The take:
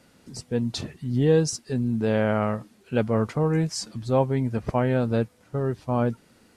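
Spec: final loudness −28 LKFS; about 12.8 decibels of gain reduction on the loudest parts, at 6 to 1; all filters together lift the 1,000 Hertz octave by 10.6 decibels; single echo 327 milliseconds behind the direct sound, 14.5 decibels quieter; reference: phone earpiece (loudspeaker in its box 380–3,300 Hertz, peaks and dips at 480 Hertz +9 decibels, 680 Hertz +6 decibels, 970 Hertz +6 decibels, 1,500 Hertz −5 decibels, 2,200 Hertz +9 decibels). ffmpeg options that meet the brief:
ffmpeg -i in.wav -af "equalizer=frequency=1000:width_type=o:gain=7.5,acompressor=threshold=-28dB:ratio=6,highpass=380,equalizer=frequency=480:width_type=q:width=4:gain=9,equalizer=frequency=680:width_type=q:width=4:gain=6,equalizer=frequency=970:width_type=q:width=4:gain=6,equalizer=frequency=1500:width_type=q:width=4:gain=-5,equalizer=frequency=2200:width_type=q:width=4:gain=9,lowpass=frequency=3300:width=0.5412,lowpass=frequency=3300:width=1.3066,aecho=1:1:327:0.188,volume=3dB" out.wav

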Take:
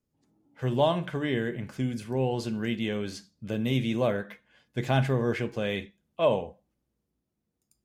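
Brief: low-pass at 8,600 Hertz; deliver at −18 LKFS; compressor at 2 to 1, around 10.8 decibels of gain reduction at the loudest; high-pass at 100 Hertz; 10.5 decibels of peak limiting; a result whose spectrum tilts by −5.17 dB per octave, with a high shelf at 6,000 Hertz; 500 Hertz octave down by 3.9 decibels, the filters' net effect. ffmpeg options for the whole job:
ffmpeg -i in.wav -af "highpass=100,lowpass=8600,equalizer=frequency=500:width_type=o:gain=-5,highshelf=frequency=6000:gain=5,acompressor=threshold=-41dB:ratio=2,volume=24.5dB,alimiter=limit=-7dB:level=0:latency=1" out.wav

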